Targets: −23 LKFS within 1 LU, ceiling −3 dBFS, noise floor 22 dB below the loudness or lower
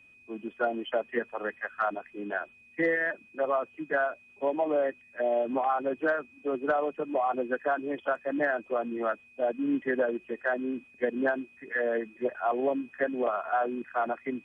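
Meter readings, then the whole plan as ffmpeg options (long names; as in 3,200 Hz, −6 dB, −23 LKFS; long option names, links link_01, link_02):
interfering tone 2,500 Hz; level of the tone −55 dBFS; integrated loudness −30.5 LKFS; sample peak −15.5 dBFS; target loudness −23.0 LKFS
→ -af "bandreject=frequency=2500:width=30"
-af "volume=7.5dB"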